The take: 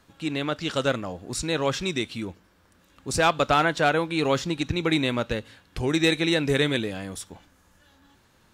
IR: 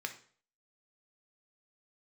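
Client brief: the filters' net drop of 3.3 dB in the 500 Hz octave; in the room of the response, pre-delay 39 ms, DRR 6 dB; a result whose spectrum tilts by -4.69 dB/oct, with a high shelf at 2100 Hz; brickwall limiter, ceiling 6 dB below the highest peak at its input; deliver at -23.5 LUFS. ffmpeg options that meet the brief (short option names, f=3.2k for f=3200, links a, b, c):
-filter_complex "[0:a]equalizer=f=500:t=o:g=-3.5,highshelf=f=2.1k:g=-8.5,alimiter=limit=-18.5dB:level=0:latency=1,asplit=2[a][b];[1:a]atrim=start_sample=2205,adelay=39[c];[b][c]afir=irnorm=-1:irlink=0,volume=-7.5dB[d];[a][d]amix=inputs=2:normalize=0,volume=6.5dB"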